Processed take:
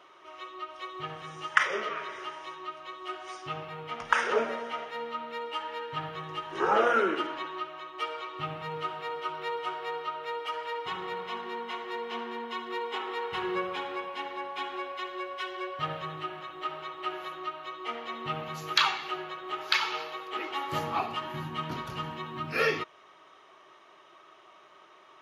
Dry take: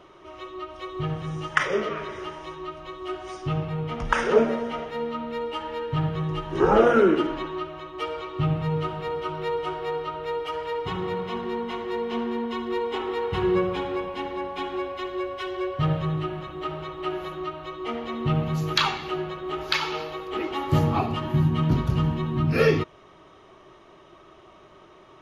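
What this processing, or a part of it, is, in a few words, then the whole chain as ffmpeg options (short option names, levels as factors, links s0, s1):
filter by subtraction: -filter_complex "[0:a]asplit=2[s0][s1];[s1]lowpass=1400,volume=-1[s2];[s0][s2]amix=inputs=2:normalize=0,volume=0.75"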